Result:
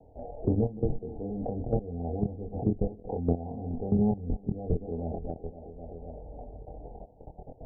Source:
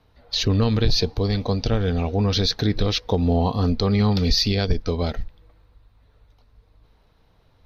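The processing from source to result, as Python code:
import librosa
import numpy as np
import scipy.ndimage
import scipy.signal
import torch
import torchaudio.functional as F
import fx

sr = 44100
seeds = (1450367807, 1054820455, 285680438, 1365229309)

p1 = x + fx.echo_feedback(x, sr, ms=258, feedback_pct=47, wet_db=-16, dry=0)
p2 = fx.dynamic_eq(p1, sr, hz=580.0, q=1.2, threshold_db=-38.0, ratio=4.0, max_db=-6)
p3 = fx.level_steps(p2, sr, step_db=19)
p4 = scipy.signal.sosfilt(scipy.signal.butter(16, 810.0, 'lowpass', fs=sr, output='sos'), p3)
p5 = fx.low_shelf(p4, sr, hz=360.0, db=-11.5)
p6 = fx.doubler(p5, sr, ms=24.0, db=-3.0)
p7 = fx.band_squash(p6, sr, depth_pct=70)
y = p7 * 10.0 ** (7.0 / 20.0)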